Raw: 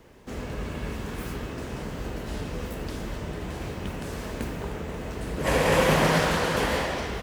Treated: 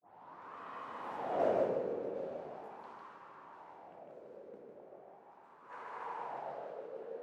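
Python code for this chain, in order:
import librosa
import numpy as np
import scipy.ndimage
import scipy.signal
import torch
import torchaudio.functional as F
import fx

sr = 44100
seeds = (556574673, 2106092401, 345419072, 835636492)

p1 = fx.tape_start_head(x, sr, length_s=0.65)
p2 = fx.doppler_pass(p1, sr, speed_mps=40, closest_m=2.8, pass_at_s=1.46)
p3 = scipy.signal.sosfilt(scipy.signal.butter(2, 130.0, 'highpass', fs=sr, output='sos'), p2)
p4 = fx.rider(p3, sr, range_db=4, speed_s=0.5)
p5 = p3 + (p4 * librosa.db_to_amplitude(1.0))
p6 = 10.0 ** (-26.0 / 20.0) * np.tanh(p5 / 10.0 ** (-26.0 / 20.0))
p7 = fx.wah_lfo(p6, sr, hz=0.39, low_hz=500.0, high_hz=1100.0, q=5.2)
p8 = p7 + fx.echo_single(p7, sr, ms=152, db=-4.0, dry=0)
y = p8 * librosa.db_to_amplitude(14.5)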